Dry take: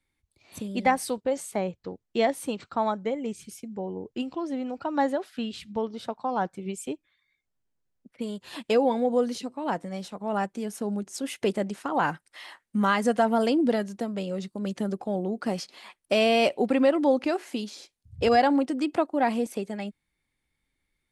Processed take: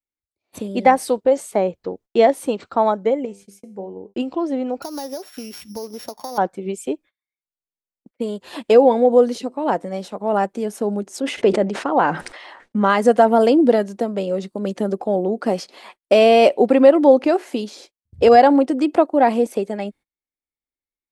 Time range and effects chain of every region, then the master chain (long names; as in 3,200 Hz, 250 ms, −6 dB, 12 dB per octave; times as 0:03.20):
0:03.25–0:04.14: parametric band 3,100 Hz −6 dB 0.29 octaves + tuned comb filter 99 Hz, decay 0.4 s, mix 70%
0:04.82–0:06.38: samples sorted by size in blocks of 8 samples + high-shelf EQ 3,500 Hz +9 dB + downward compressor 4 to 1, threshold −36 dBFS
0:11.20–0:12.90: high-frequency loss of the air 92 metres + level that may fall only so fast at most 61 dB per second
whole clip: parametric band 130 Hz −8 dB 0.55 octaves; noise gate −51 dBFS, range −26 dB; parametric band 500 Hz +8.5 dB 2.1 octaves; level +3 dB